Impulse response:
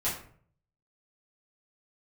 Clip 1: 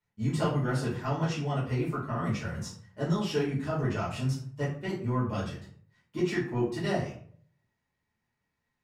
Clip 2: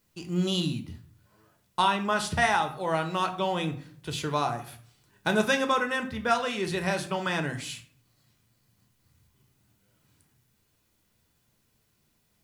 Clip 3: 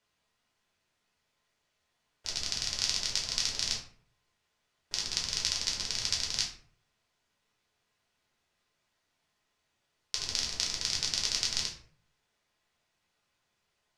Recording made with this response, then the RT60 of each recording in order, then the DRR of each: 1; 0.55, 0.55, 0.55 s; -9.5, 5.5, -2.5 dB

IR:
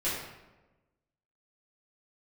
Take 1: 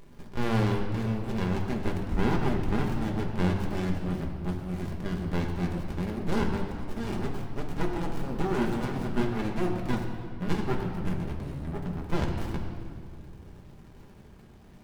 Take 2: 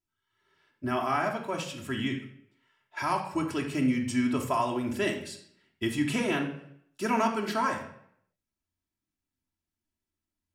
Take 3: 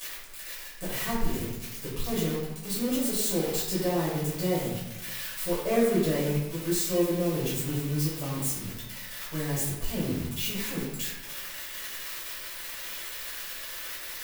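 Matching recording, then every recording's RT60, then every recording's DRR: 3; 2.3, 0.70, 1.1 s; 0.0, -0.5, -11.0 dB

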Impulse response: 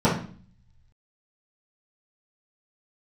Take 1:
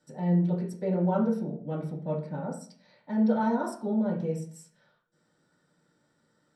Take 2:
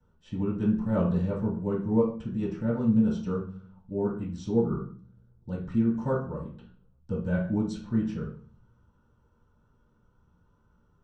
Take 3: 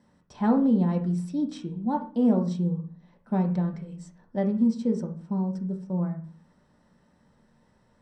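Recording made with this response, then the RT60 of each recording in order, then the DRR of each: 2; 0.45, 0.45, 0.45 s; -5.0, -11.5, 2.0 dB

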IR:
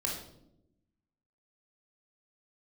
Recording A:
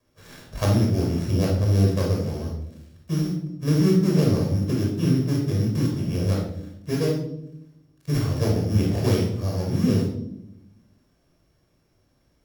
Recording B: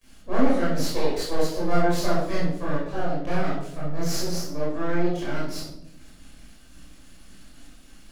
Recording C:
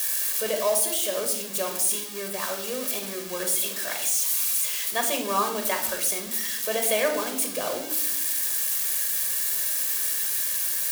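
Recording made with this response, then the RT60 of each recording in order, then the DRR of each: A; 0.85, 0.85, 0.85 s; -1.5, -9.0, 4.5 dB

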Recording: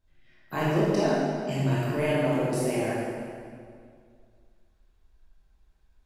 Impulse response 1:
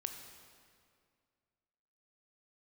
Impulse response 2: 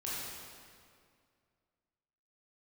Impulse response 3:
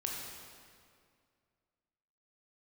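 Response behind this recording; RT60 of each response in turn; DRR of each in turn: 2; 2.2, 2.2, 2.2 s; 5.0, -8.0, -2.0 dB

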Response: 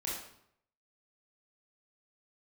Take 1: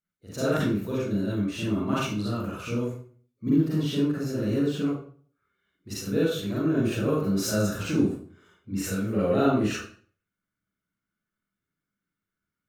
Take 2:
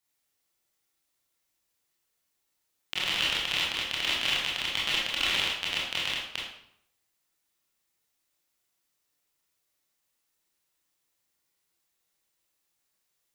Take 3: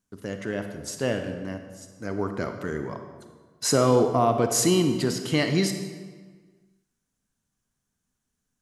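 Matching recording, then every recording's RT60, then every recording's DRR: 2; 0.45, 0.70, 1.5 s; -8.5, -5.5, 6.5 dB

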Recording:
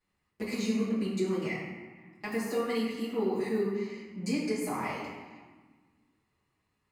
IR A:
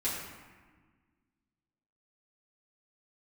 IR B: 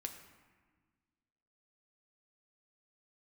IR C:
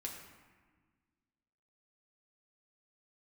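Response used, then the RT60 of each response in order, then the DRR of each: A; 1.5, 1.5, 1.5 s; -10.0, 4.0, -1.5 dB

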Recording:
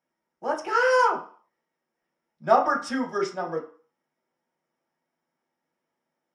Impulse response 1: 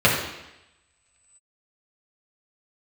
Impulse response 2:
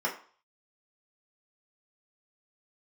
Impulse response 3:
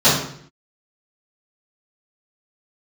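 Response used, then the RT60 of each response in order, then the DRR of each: 2; 0.90, 0.45, 0.60 s; -6.0, -4.0, -13.0 dB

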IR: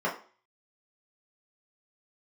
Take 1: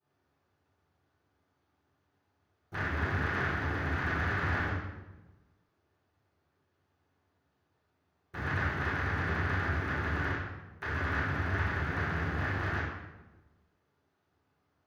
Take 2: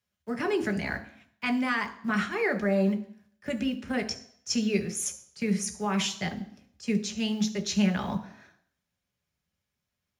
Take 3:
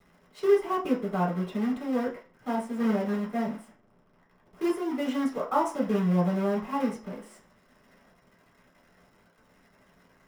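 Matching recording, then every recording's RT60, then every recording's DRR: 3; 1.1, 0.60, 0.40 s; -18.0, 5.0, -6.0 dB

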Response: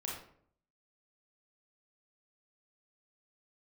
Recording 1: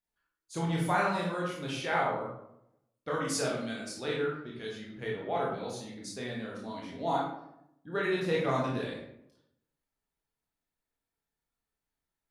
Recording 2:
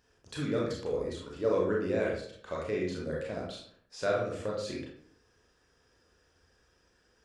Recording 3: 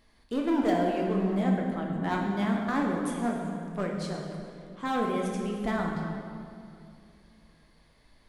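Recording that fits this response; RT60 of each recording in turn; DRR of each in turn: 2; 0.80, 0.60, 2.5 s; -4.0, -4.0, -1.0 dB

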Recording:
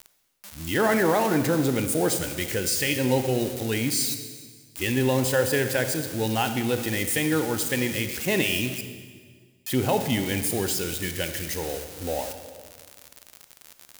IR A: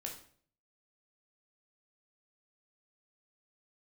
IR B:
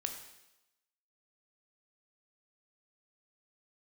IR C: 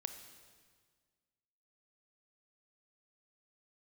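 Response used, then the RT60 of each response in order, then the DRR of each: C; 0.50, 0.95, 1.7 s; 0.0, 4.0, 7.5 dB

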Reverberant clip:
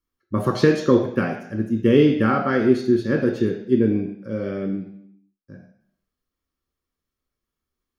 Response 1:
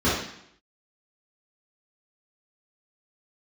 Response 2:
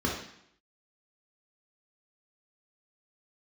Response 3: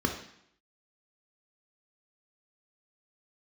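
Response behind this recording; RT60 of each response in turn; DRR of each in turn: 3; 0.70, 0.70, 0.70 s; -11.0, -2.5, 3.0 dB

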